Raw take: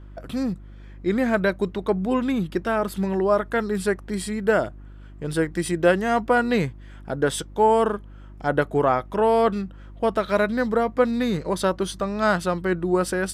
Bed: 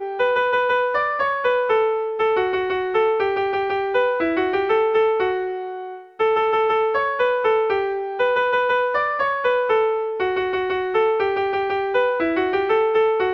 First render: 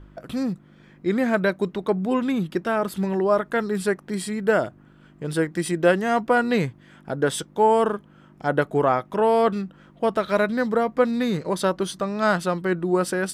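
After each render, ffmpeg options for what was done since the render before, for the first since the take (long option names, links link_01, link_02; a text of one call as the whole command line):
ffmpeg -i in.wav -af "bandreject=frequency=50:width_type=h:width=4,bandreject=frequency=100:width_type=h:width=4" out.wav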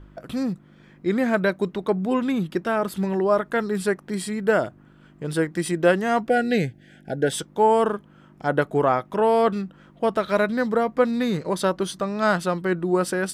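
ffmpeg -i in.wav -filter_complex "[0:a]asettb=1/sr,asplit=3[link_01][link_02][link_03];[link_01]atrim=end=6.294[link_04];[link_02]atrim=start=6.29:end=7.33,asetpts=PTS-STARTPTS,afade=type=in:duration=0.004:curve=qsin,afade=type=out:start_time=1.036:duration=0.004:curve=qsin,asuperstop=centerf=1100:order=12:qfactor=1.8[link_05];[link_03]atrim=start=7.326[link_06];[link_04][link_05]acrossfade=duration=0.004:curve1=hsin:curve2=qsin[link_07];[link_07][link_06]acrossfade=duration=0.004:curve1=qsin:curve2=hsin" out.wav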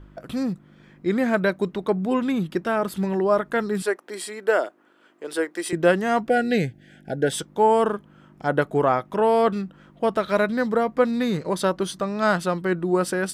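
ffmpeg -i in.wav -filter_complex "[0:a]asettb=1/sr,asplit=3[link_01][link_02][link_03];[link_01]atrim=end=3.824[link_04];[link_02]atrim=start=3.82:end=5.73,asetpts=PTS-STARTPTS,afade=type=in:duration=0.004:curve=qsin,afade=type=out:start_time=1.906:duration=0.004:curve=qsin,highpass=frequency=340:width=0.5412,highpass=frequency=340:width=1.3066[link_05];[link_03]atrim=start=5.726[link_06];[link_04][link_05]acrossfade=duration=0.004:curve1=hsin:curve2=qsin[link_07];[link_07][link_06]acrossfade=duration=0.004:curve1=qsin:curve2=hsin" out.wav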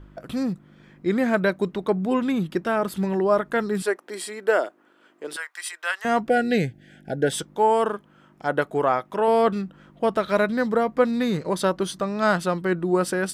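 ffmpeg -i in.wav -filter_complex "[0:a]asettb=1/sr,asplit=3[link_01][link_02][link_03];[link_01]atrim=end=5.364[link_04];[link_02]atrim=start=5.36:end=6.05,asetpts=PTS-STARTPTS,afade=type=in:duration=0.004:curve=qsin,afade=type=out:start_time=0.686:duration=0.004:curve=qsin,highpass=frequency=1000:width=0.5412,highpass=frequency=1000:width=1.3066[link_05];[link_03]atrim=start=6.046[link_06];[link_04][link_05]acrossfade=duration=0.004:curve1=hsin:curve2=qsin[link_07];[link_07][link_06]acrossfade=duration=0.004:curve1=qsin:curve2=hsin,asettb=1/sr,asplit=3[link_08][link_09][link_10];[link_08]atrim=end=7.564[link_11];[link_09]atrim=start=7.56:end=9.28,asetpts=PTS-STARTPTS,afade=type=in:duration=0.004:curve=qsin,afade=type=out:start_time=1.716:duration=0.004:curve=qsin,lowshelf=frequency=250:gain=-8.5[link_12];[link_10]atrim=start=9.276[link_13];[link_11][link_12]acrossfade=duration=0.004:curve1=hsin:curve2=qsin[link_14];[link_14][link_13]acrossfade=duration=0.004:curve1=qsin:curve2=hsin" out.wav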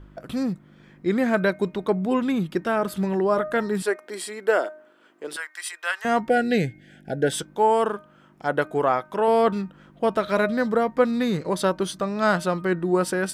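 ffmpeg -i in.wav -af "bandreject=frequency=307.8:width_type=h:width=4,bandreject=frequency=615.6:width_type=h:width=4,bandreject=frequency=923.4:width_type=h:width=4,bandreject=frequency=1231.2:width_type=h:width=4,bandreject=frequency=1539:width_type=h:width=4,bandreject=frequency=1846.8:width_type=h:width=4,bandreject=frequency=2154.6:width_type=h:width=4,bandreject=frequency=2462.4:width_type=h:width=4" out.wav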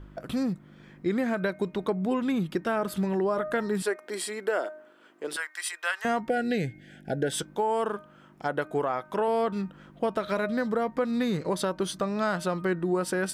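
ffmpeg -i in.wav -af "alimiter=limit=-13.5dB:level=0:latency=1:release=182,acompressor=threshold=-26dB:ratio=2" out.wav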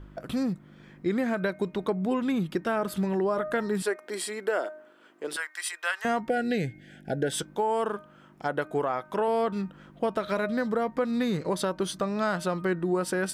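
ffmpeg -i in.wav -af anull out.wav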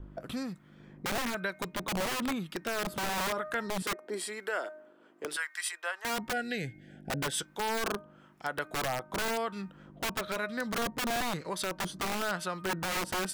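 ffmpeg -i in.wav -filter_complex "[0:a]acrossover=split=1000[link_01][link_02];[link_01]aeval=exprs='val(0)*(1-0.7/2+0.7/2*cos(2*PI*1*n/s))':channel_layout=same[link_03];[link_02]aeval=exprs='val(0)*(1-0.7/2-0.7/2*cos(2*PI*1*n/s))':channel_layout=same[link_04];[link_03][link_04]amix=inputs=2:normalize=0,acrossover=split=900[link_05][link_06];[link_05]aeval=exprs='(mod(23.7*val(0)+1,2)-1)/23.7':channel_layout=same[link_07];[link_07][link_06]amix=inputs=2:normalize=0" out.wav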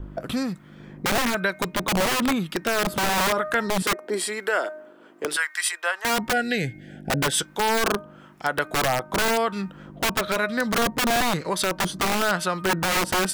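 ffmpeg -i in.wav -af "volume=10dB" out.wav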